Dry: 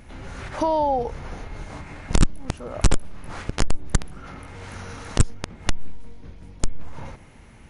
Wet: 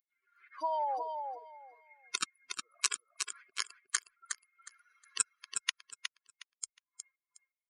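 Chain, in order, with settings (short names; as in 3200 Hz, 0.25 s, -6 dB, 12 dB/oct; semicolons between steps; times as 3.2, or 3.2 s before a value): per-bin expansion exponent 3; HPF 1500 Hz 12 dB/oct; feedback echo 0.363 s, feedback 21%, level -6 dB; gain +3 dB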